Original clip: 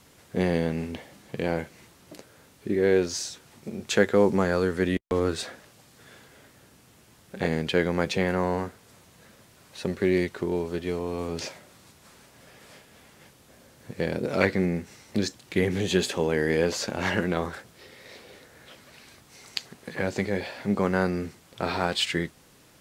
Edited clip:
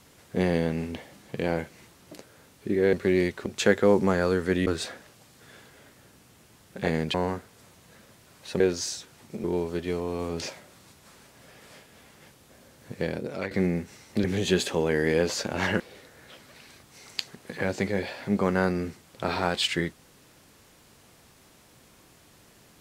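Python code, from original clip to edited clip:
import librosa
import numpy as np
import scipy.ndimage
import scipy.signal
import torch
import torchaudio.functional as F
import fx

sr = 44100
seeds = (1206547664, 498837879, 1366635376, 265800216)

y = fx.edit(x, sr, fx.swap(start_s=2.93, length_s=0.84, other_s=9.9, other_length_s=0.53),
    fx.cut(start_s=4.98, length_s=0.27),
    fx.cut(start_s=7.72, length_s=0.72),
    fx.fade_out_to(start_s=13.94, length_s=0.56, floor_db=-14.0),
    fx.cut(start_s=15.23, length_s=0.44),
    fx.cut(start_s=17.23, length_s=0.95), tone=tone)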